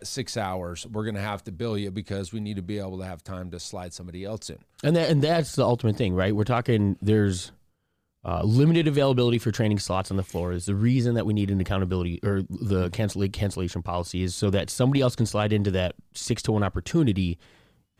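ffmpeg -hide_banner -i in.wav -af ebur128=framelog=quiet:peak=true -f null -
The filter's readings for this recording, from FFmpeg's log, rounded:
Integrated loudness:
  I:         -25.5 LUFS
  Threshold: -35.9 LUFS
Loudness range:
  LRA:         8.3 LU
  Threshold: -45.7 LUFS
  LRA low:   -32.0 LUFS
  LRA high:  -23.7 LUFS
True peak:
  Peak:      -11.2 dBFS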